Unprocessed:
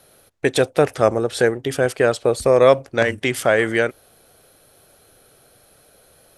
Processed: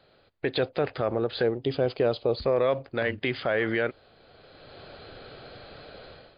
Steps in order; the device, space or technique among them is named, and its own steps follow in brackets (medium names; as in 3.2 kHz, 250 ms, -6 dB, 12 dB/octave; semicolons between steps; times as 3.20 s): 1.43–2.37 s: peaking EQ 1.7 kHz -12 dB 0.9 oct; low-bitrate web radio (level rider gain up to 15.5 dB; peak limiter -9.5 dBFS, peak gain reduction 8.5 dB; trim -5 dB; MP3 48 kbps 11.025 kHz)